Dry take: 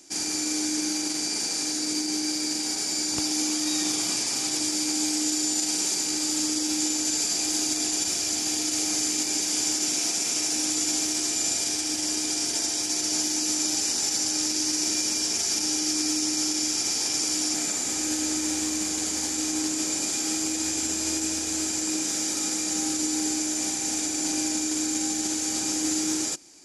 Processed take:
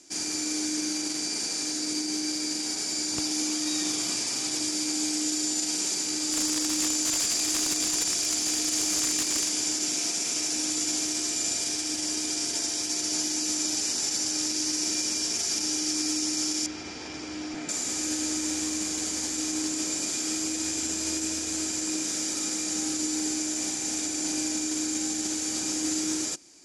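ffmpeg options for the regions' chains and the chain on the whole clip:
-filter_complex "[0:a]asettb=1/sr,asplit=3[s0][s1][s2];[s0]atrim=end=6.324[s3];[s1]atrim=start=6.32:end=9.49,asetpts=PTS-STARTPTS,afade=t=in:d=0.004:c=qsin,afade=t=out:st=3.166:d=0.004:c=qsin,highshelf=f=4900:g=4,bandreject=f=50:t=h:w=6,bandreject=f=100:t=h:w=6,bandreject=f=150:t=h:w=6,aeval=exprs='(mod(5.62*val(0)+1,2)-1)/5.62':c=same[s4];[s2]atrim=start=9.486[s5];[s3][s4]acrossfade=d=0.004:c1=hsin:c2=qsin[s6];[s6][s5]acrossfade=d=0.004:c1=qsin:c2=hsin,asettb=1/sr,asplit=3[s7][s8][s9];[s7]atrim=end=16.664[s10];[s8]atrim=start=16.66:end=17.69,asetpts=PTS-STARTPTS,afade=t=in:d=0.004:c=qsin,afade=t=out:st=1.026:d=0.004:c=qsin,lowpass=2600,lowshelf=f=67:g=9.5[s11];[s9]atrim=start=17.686[s12];[s10][s11]acrossfade=d=0.004:c1=hsin:c2=qsin[s13];[s13][s12]acrossfade=d=0.004:c1=qsin:c2=hsin,lowpass=11000,bandreject=f=820:w=12,volume=0.794"

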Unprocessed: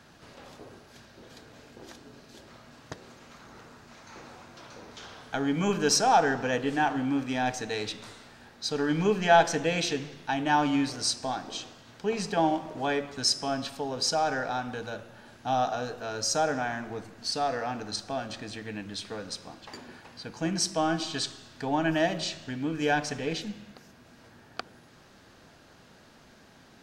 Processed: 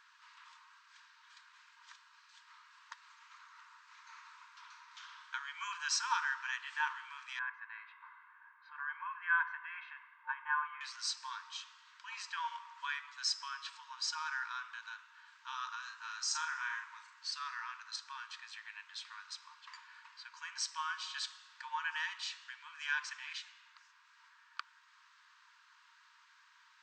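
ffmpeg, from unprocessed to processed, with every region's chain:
-filter_complex "[0:a]asettb=1/sr,asplit=3[s0][s1][s2];[s0]atrim=end=7.394[s3];[s1]atrim=start=7.39:end=10.81,asetpts=PTS-STARTPTS,afade=t=in:d=0.004:c=qsin,afade=t=out:st=3.416:d=0.004:c=qsin,lowpass=f=1800:w=0.5412,lowpass=f=1800:w=1.3066,aecho=1:1:1.9:0.6,atrim=end_sample=150822[s4];[s2]atrim=start=10.806[s5];[s3][s4]acrossfade=d=0.004:c1=hsin:c2=qsin[s6];[s6][s5]acrossfade=d=0.004:c1=qsin:c2=hsin,asettb=1/sr,asplit=3[s7][s8][s9];[s7]atrim=end=15.804[s10];[s8]atrim=start=15.8:end=17.19,asetpts=PTS-STARTPTS,afade=t=in:d=0.004:c=qsin,afade=t=out:st=1.386:d=0.004:c=qsin,highshelf=f=11000:g=10.5,asplit=2[s11][s12];[s12]adelay=38,volume=0.531[s13];[s11][s13]amix=inputs=2:normalize=0,atrim=end_sample=61299[s14];[s9]atrim=start=17.186[s15];[s10][s14]acrossfade=d=0.004:c1=hsin:c2=qsin[s16];[s16][s15]acrossfade=d=0.004:c1=qsin:c2=hsin,afftfilt=real='re*between(b*sr/4096,900,8500)':imag='im*between(b*sr/4096,900,8500)':win_size=4096:overlap=0.75,highshelf=f=4200:g=-10,volume=0.708"

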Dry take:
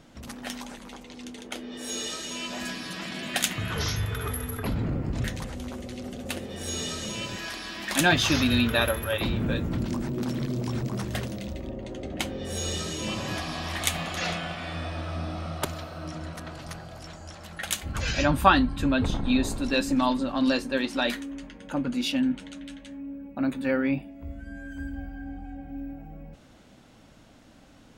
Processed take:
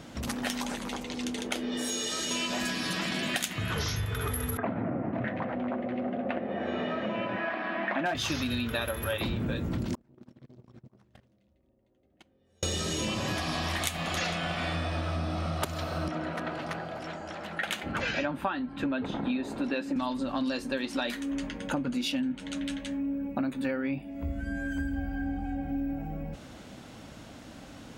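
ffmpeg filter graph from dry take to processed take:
-filter_complex "[0:a]asettb=1/sr,asplit=3[s0][s1][s2];[s0]atrim=end=1.694[s3];[s1]atrim=start=1.69:end=2.31,asetpts=PTS-STARTPTS,afade=t=in:d=0.004:c=qsin,afade=t=out:st=0.616:d=0.004:c=qsin,bandreject=f=2600:w=20,acompressor=threshold=0.0178:ratio=6:attack=3.2:release=140:knee=1:detection=peak,asplit=2[s4][s5];[s5]adelay=32,volume=0.237[s6];[s4][s6]amix=inputs=2:normalize=0,atrim=end_sample=27342[s7];[s2]atrim=start=2.306[s8];[s3][s7]acrossfade=d=0.004:c1=hsin:c2=qsin[s9];[s9][s8]acrossfade=d=0.004:c1=qsin:c2=hsin,asettb=1/sr,asplit=3[s10][s11][s12];[s10]atrim=end=4.574[s13];[s11]atrim=start=4.57:end=8.15,asetpts=PTS-STARTPTS,afade=t=in:d=0.004:c=qsin,afade=t=out:st=3.576:d=0.004:c=qsin,highpass=f=140:w=0.5412,highpass=f=140:w=1.3066,equalizer=f=150:t=q:w=4:g=-9,equalizer=f=420:t=q:w=4:g=-5,equalizer=f=670:t=q:w=4:g=9,lowpass=f=2100:w=0.5412,lowpass=f=2100:w=1.3066,volume=5.01,asoftclip=hard,volume=0.2[s14];[s12]atrim=start=8.146[s15];[s13][s14]acrossfade=d=0.004:c1=hsin:c2=qsin[s16];[s16][s15]acrossfade=d=0.004:c1=qsin:c2=hsin,asettb=1/sr,asplit=3[s17][s18][s19];[s17]atrim=end=9.954[s20];[s18]atrim=start=9.95:end=12.63,asetpts=PTS-STARTPTS,afade=t=in:d=0.004:c=qsin,afade=t=out:st=2.676:d=0.004:c=qsin,lowpass=f=2800:p=1,agate=range=0.00891:threshold=0.0501:ratio=16:release=100:detection=peak,acompressor=threshold=0.00112:ratio=2.5:attack=3.2:release=140:knee=1:detection=peak[s21];[s19]atrim=start=12.626[s22];[s20][s21]acrossfade=d=0.004:c1=hsin:c2=qsin[s23];[s23][s22]acrossfade=d=0.004:c1=qsin:c2=hsin,asettb=1/sr,asplit=3[s24][s25][s26];[s24]atrim=end=16.084[s27];[s25]atrim=start=16.08:end=19.96,asetpts=PTS-STARTPTS,afade=t=in:d=0.004:c=qsin,afade=t=out:st=3.876:d=0.004:c=qsin,acrossover=split=170 3200:gain=0.112 1 0.158[s28][s29][s30];[s28][s29][s30]amix=inputs=3:normalize=0,bandreject=f=1100:w=16[s31];[s26]atrim=start=19.956[s32];[s27][s31]acrossfade=d=0.004:c1=hsin:c2=qsin[s33];[s33][s32]acrossfade=d=0.004:c1=qsin:c2=hsin,highpass=44,acompressor=threshold=0.0178:ratio=12,volume=2.37"

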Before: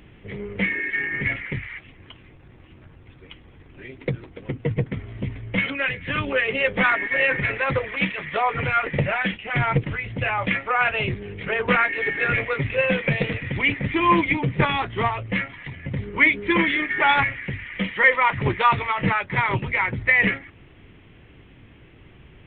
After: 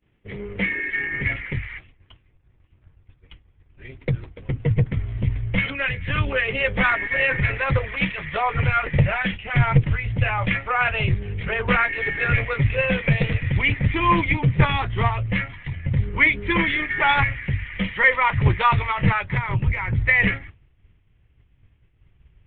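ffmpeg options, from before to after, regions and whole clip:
-filter_complex "[0:a]asettb=1/sr,asplit=3[s0][s1][s2];[s0]atrim=end=19.374[s3];[s1]atrim=start=19.37:end=19.95,asetpts=PTS-STARTPTS,afade=t=in:d=0.004:c=qsin,afade=t=out:st=0.576:d=0.004:c=qsin,bass=f=250:g=4,treble=f=4000:g=-10,acompressor=threshold=0.0708:ratio=5:attack=3.2:release=140:knee=1:detection=peak[s4];[s2]atrim=start=19.946[s5];[s3][s4]acrossfade=d=0.004:c1=hsin:c2=qsin[s6];[s6][s5]acrossfade=d=0.004:c1=qsin:c2=hsin,agate=range=0.0224:threshold=0.0158:ratio=3:detection=peak,asubboost=boost=5.5:cutoff=110"

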